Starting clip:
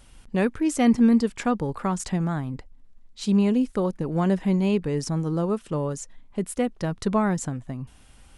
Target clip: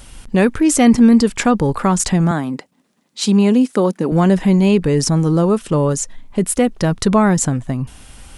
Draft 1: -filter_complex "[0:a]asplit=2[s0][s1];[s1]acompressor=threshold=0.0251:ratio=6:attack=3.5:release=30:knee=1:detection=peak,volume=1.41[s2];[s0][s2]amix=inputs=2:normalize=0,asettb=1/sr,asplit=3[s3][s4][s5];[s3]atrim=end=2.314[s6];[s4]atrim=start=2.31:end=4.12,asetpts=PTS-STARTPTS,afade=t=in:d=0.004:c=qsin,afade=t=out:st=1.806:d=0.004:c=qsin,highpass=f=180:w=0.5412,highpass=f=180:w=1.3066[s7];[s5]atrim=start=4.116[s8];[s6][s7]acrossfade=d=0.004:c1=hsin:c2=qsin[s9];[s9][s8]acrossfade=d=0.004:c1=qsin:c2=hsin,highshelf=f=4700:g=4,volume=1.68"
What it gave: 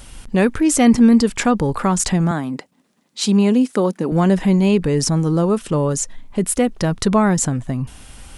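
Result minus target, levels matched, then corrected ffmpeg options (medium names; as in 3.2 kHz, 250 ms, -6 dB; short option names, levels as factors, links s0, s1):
compression: peak gain reduction +6 dB
-filter_complex "[0:a]asplit=2[s0][s1];[s1]acompressor=threshold=0.0562:ratio=6:attack=3.5:release=30:knee=1:detection=peak,volume=1.41[s2];[s0][s2]amix=inputs=2:normalize=0,asettb=1/sr,asplit=3[s3][s4][s5];[s3]atrim=end=2.314[s6];[s4]atrim=start=2.31:end=4.12,asetpts=PTS-STARTPTS,afade=t=in:d=0.004:c=qsin,afade=t=out:st=1.806:d=0.004:c=qsin,highpass=f=180:w=0.5412,highpass=f=180:w=1.3066[s7];[s5]atrim=start=4.116[s8];[s6][s7]acrossfade=d=0.004:c1=hsin:c2=qsin[s9];[s9][s8]acrossfade=d=0.004:c1=qsin:c2=hsin,highshelf=f=4700:g=4,volume=1.68"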